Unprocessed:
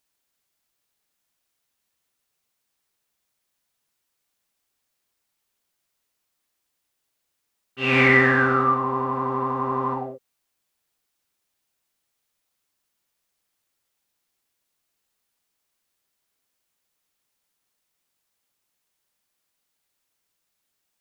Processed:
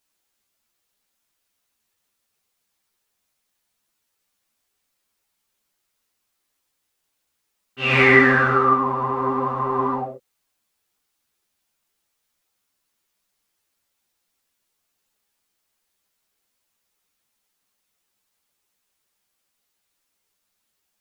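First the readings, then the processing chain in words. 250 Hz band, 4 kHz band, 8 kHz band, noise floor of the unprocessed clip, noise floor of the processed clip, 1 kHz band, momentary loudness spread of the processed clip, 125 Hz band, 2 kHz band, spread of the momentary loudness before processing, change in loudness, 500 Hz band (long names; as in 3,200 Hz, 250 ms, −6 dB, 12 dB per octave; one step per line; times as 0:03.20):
+1.5 dB, +3.0 dB, can't be measured, −78 dBFS, −76 dBFS, +3.0 dB, 13 LU, +1.0 dB, +2.5 dB, 12 LU, +2.5 dB, +3.0 dB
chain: string-ensemble chorus
level +5.5 dB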